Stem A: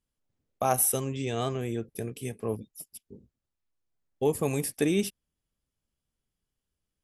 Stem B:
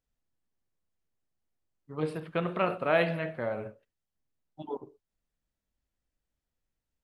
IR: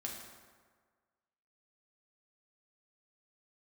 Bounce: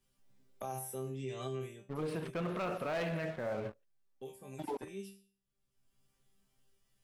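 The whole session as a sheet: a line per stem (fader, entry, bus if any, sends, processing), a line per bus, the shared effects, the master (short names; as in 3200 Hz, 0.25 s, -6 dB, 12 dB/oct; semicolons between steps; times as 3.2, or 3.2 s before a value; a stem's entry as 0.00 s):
+2.0 dB, 0.00 s, no send, resonator bank C3 fifth, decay 0.35 s; three-band squash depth 70%; auto duck -10 dB, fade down 0.25 s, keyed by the second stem
-8.0 dB, 0.00 s, no send, sample leveller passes 3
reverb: off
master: limiter -30.5 dBFS, peak gain reduction 11 dB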